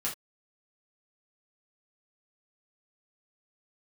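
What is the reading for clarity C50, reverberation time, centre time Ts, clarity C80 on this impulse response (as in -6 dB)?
9.5 dB, no single decay rate, 21 ms, 18.0 dB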